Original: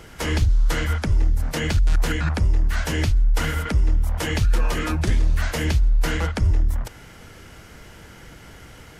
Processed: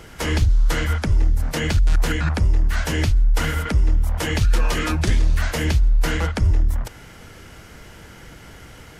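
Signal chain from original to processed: 4.41–5.39 s: peaking EQ 4.6 kHz +3.5 dB 2.5 oct; trim +1.5 dB

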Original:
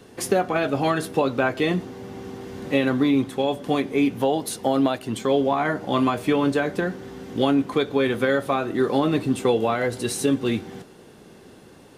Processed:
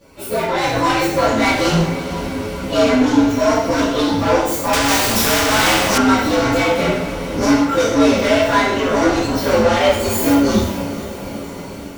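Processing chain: frequency axis rescaled in octaves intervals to 120%; level rider gain up to 12 dB; saturation -19 dBFS, distortion -6 dB; chorus voices 6, 0.74 Hz, delay 15 ms, depth 3.2 ms; echo that smears into a reverb 456 ms, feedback 57%, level -13.5 dB; gated-style reverb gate 230 ms falling, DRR -6 dB; 4.73–5.98 s: spectrum-flattening compressor 2:1; trim +3.5 dB

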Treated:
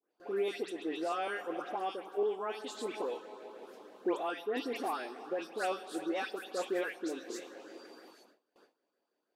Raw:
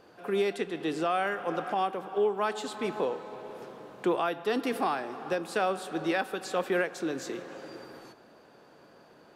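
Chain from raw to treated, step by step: LFO notch saw up 6.3 Hz 510–2500 Hz; high-pass 260 Hz 24 dB/octave; phase dispersion highs, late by 132 ms, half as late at 2.3 kHz; gate with hold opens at -45 dBFS; on a send: reverberation RT60 0.55 s, pre-delay 3 ms, DRR 22.5 dB; on the sum: trim -4.5 dB

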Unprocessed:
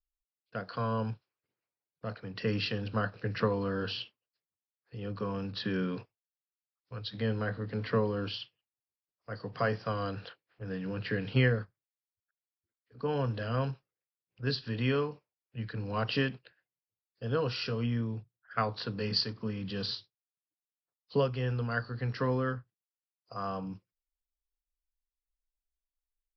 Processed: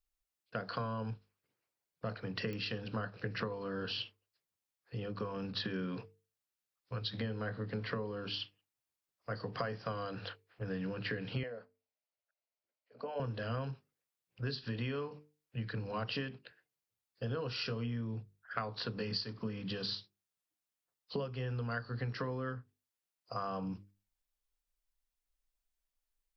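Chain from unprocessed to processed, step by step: compression 10:1, threshold -38 dBFS, peak gain reduction 17.5 dB; hum notches 50/100/150/200/250/300/350/400/450 Hz; 11.43–13.20 s: cabinet simulation 350–4600 Hz, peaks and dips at 350 Hz -8 dB, 610 Hz +10 dB, 1.2 kHz -6 dB, 1.7 kHz -7 dB, 3.5 kHz -9 dB; clicks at 2.53 s, -34 dBFS; trim +4 dB

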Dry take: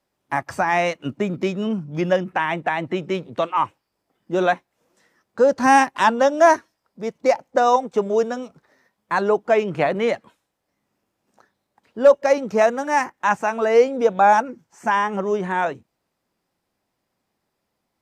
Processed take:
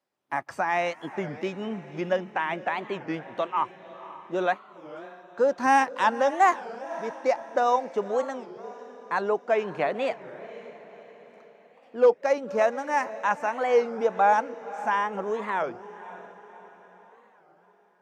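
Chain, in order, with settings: high-pass 330 Hz 6 dB/octave; treble shelf 4.7 kHz -7 dB; on a send: echo that smears into a reverb 531 ms, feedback 49%, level -15 dB; on the sum: warped record 33 1/3 rpm, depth 250 cents; trim -5 dB

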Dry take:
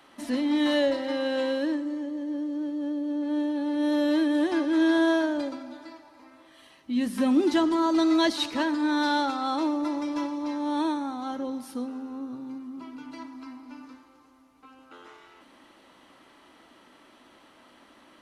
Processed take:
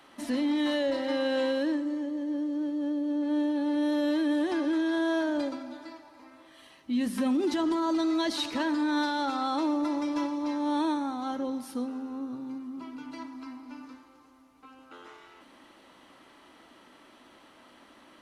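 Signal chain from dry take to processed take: peak limiter -21 dBFS, peak gain reduction 9 dB

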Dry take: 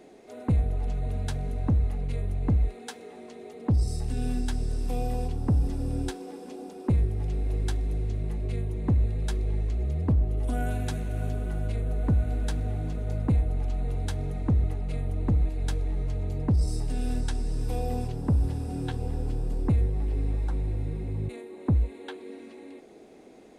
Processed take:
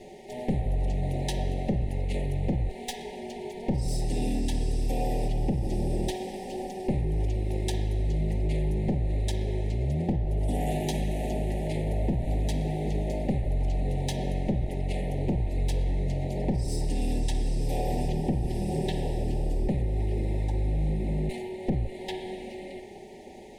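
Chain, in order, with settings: comb filter that takes the minimum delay 5.2 ms; Chebyshev band-stop 890–1800 Hz, order 4; in parallel at +2.5 dB: peak limiter -24 dBFS, peak gain reduction 7.5 dB; on the sum: compression 6:1, threshold -23 dBFS, peak gain reduction 6.5 dB; on a send at -4 dB: band-pass 670–3400 Hz + reverberation RT60 1.3 s, pre-delay 41 ms

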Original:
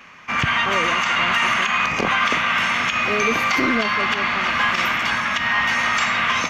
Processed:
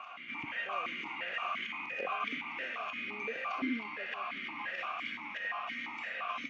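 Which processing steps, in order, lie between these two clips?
peaking EQ 1.3 kHz +2 dB; reverse echo 994 ms -9 dB; stepped vowel filter 5.8 Hz; trim -7.5 dB

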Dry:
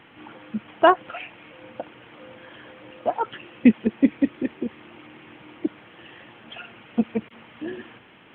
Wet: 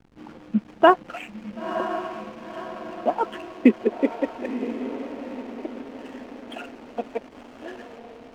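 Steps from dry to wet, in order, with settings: high-pass sweep 190 Hz -> 630 Hz, 2.84–4.50 s; echo that smears into a reverb 992 ms, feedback 50%, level -9 dB; hysteresis with a dead band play -38 dBFS

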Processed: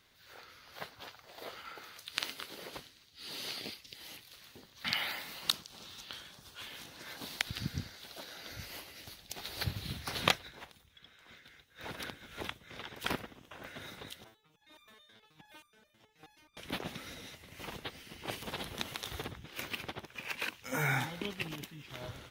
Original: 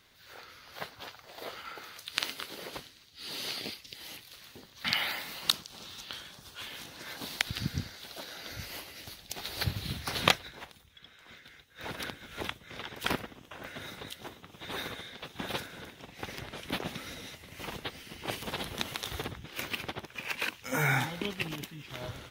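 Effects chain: 14.24–16.57 s: resonator arpeggio 9.4 Hz 110–1200 Hz; trim -4 dB

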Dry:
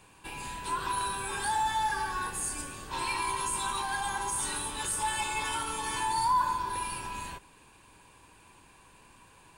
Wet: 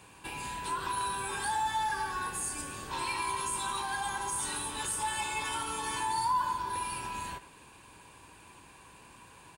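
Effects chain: high-pass 47 Hz; in parallel at +2.5 dB: compression, threshold -42 dBFS, peak gain reduction 17.5 dB; on the sum: speakerphone echo 100 ms, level -13 dB; trim -4.5 dB

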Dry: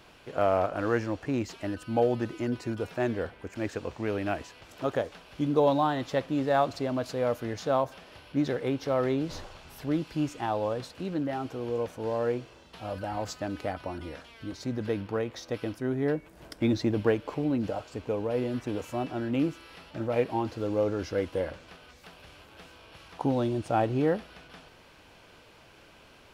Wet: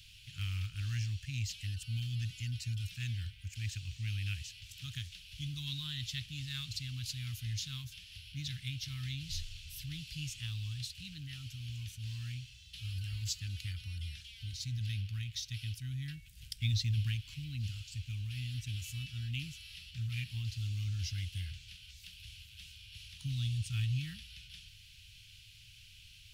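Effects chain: Chebyshev band-stop 110–2900 Hz, order 3; trim +4.5 dB

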